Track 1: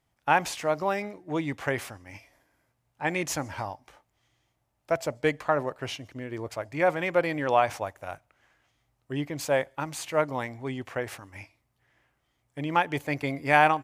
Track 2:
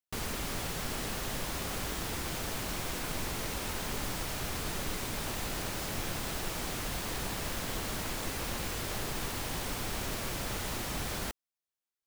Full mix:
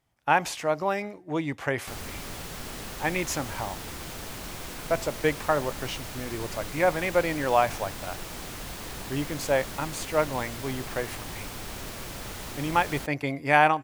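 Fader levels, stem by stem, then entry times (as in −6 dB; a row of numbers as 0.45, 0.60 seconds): +0.5, −2.0 decibels; 0.00, 1.75 seconds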